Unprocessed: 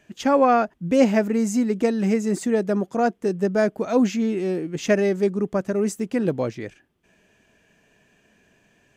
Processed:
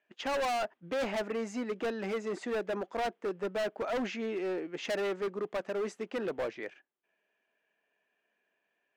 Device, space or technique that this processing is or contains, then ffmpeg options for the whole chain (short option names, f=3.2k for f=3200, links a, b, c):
walkie-talkie: -af "highpass=520,lowpass=2.9k,asoftclip=type=hard:threshold=-28dB,agate=range=-14dB:threshold=-51dB:ratio=16:detection=peak,volume=-1.5dB"